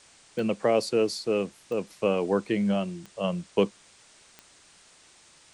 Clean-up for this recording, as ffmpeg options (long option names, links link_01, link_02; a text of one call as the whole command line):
ffmpeg -i in.wav -af "adeclick=threshold=4,afwtdn=0.0022" out.wav